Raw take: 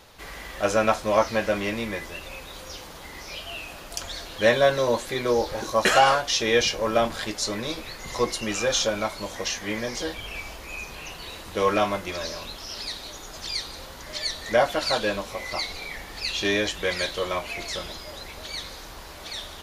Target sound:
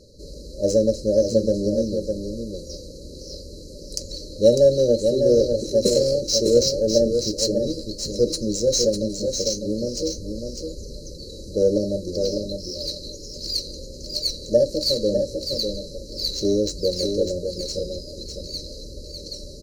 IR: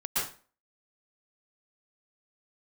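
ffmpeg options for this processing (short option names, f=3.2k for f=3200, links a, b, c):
-af "afftfilt=real='re*(1-between(b*sr/4096,610,3900))':imag='im*(1-between(b*sr/4096,610,3900))':win_size=4096:overlap=0.75,adynamicsmooth=sensitivity=4:basefreq=5.9k,aecho=1:1:601:0.501,volume=5.5dB"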